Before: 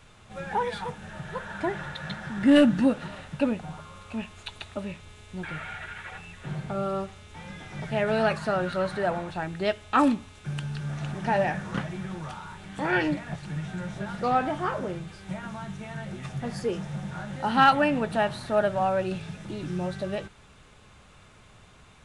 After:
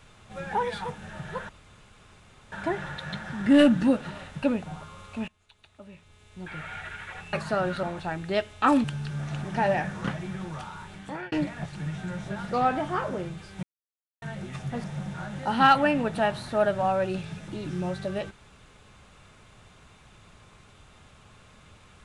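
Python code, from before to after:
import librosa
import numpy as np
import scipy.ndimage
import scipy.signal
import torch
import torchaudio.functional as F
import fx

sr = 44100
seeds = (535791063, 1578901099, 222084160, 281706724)

y = fx.edit(x, sr, fx.insert_room_tone(at_s=1.49, length_s=1.03),
    fx.fade_in_from(start_s=4.25, length_s=1.51, curve='qua', floor_db=-21.0),
    fx.cut(start_s=6.3, length_s=1.99),
    fx.cut(start_s=8.79, length_s=0.35),
    fx.cut(start_s=10.15, length_s=0.39),
    fx.fade_out_span(start_s=12.63, length_s=0.39),
    fx.silence(start_s=15.33, length_s=0.59),
    fx.cut(start_s=16.54, length_s=0.27), tone=tone)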